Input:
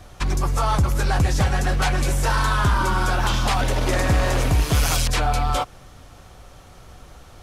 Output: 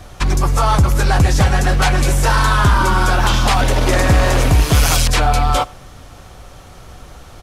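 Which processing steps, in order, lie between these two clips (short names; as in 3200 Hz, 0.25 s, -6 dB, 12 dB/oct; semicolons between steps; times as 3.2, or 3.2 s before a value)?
outdoor echo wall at 16 m, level -25 dB; gain +6.5 dB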